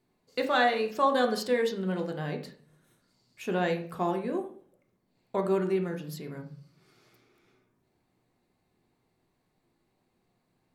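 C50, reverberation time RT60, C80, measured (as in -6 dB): 9.5 dB, 0.50 s, 14.0 dB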